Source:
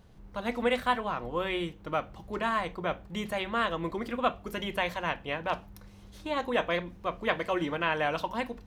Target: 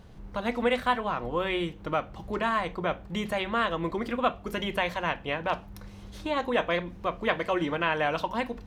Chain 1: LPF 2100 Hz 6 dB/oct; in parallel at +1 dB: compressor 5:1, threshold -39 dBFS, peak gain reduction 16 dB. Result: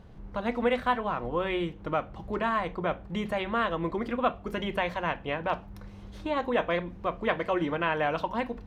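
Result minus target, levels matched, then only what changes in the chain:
8000 Hz band -7.5 dB
change: LPF 7700 Hz 6 dB/oct

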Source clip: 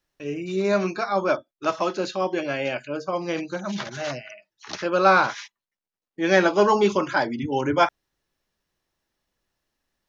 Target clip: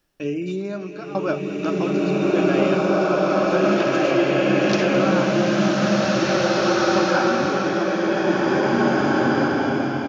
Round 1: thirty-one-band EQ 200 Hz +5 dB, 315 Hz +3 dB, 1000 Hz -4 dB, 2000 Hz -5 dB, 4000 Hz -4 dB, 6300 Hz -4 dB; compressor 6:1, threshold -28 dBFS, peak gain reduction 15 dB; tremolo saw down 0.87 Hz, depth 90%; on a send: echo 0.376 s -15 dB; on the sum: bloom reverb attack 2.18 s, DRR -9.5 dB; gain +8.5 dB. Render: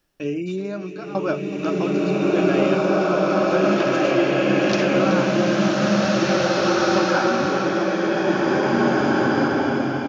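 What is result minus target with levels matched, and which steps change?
echo 0.163 s late
change: echo 0.213 s -15 dB

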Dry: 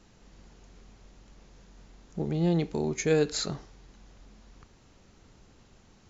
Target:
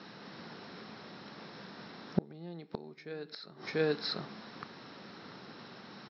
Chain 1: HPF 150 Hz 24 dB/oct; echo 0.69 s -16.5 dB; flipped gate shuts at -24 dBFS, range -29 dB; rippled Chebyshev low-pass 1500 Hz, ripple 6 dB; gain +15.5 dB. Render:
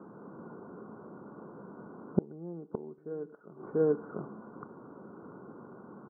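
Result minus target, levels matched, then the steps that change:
2000 Hz band -15.0 dB
change: rippled Chebyshev low-pass 5500 Hz, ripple 6 dB

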